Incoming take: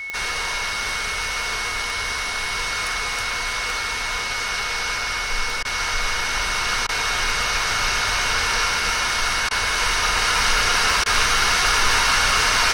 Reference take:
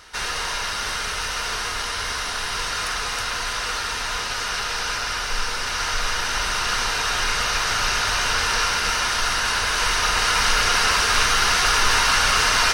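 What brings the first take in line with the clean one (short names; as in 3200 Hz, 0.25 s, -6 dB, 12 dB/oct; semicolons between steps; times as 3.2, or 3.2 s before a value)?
clip repair -8.5 dBFS; de-click; notch 2200 Hz, Q 30; interpolate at 5.63/6.87/9.49/11.04, 18 ms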